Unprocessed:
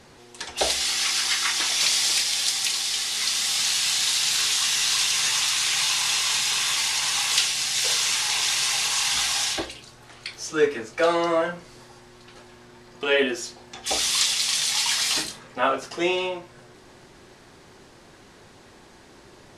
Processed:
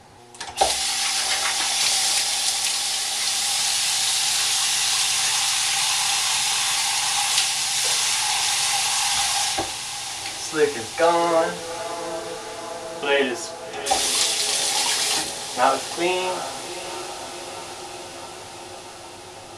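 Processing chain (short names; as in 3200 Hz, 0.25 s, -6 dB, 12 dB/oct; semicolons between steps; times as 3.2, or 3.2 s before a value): thirty-one-band EQ 100 Hz +11 dB, 800 Hz +12 dB, 10000 Hz +7 dB; on a send: diffused feedback echo 0.751 s, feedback 73%, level -11.5 dB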